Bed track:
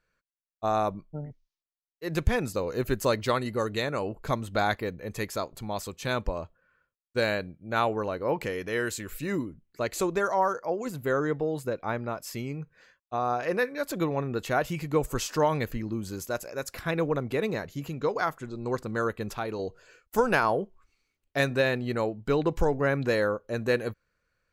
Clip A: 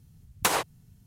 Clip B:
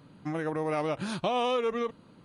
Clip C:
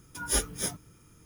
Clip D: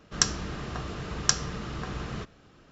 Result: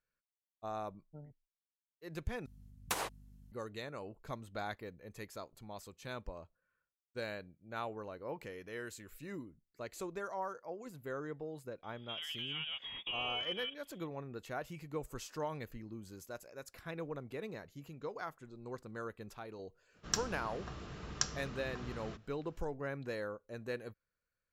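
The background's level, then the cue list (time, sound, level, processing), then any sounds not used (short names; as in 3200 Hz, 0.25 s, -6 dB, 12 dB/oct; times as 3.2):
bed track -15 dB
2.46 replace with A -12 dB + hum 50 Hz, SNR 13 dB
11.83 add B -12 dB + inverted band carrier 3500 Hz
19.92 add D -11 dB, fades 0.05 s
not used: C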